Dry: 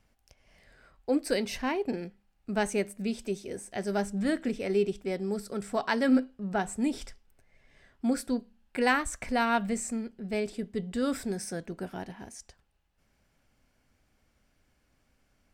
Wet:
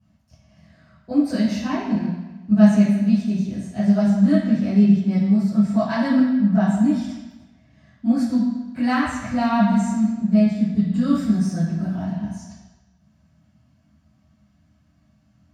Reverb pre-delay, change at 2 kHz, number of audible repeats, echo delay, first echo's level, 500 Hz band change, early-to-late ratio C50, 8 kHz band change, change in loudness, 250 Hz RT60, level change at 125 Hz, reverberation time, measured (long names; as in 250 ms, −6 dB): 3 ms, +1.5 dB, no echo audible, no echo audible, no echo audible, +2.0 dB, 0.5 dB, can't be measured, +11.5 dB, 0.95 s, +18.5 dB, 1.2 s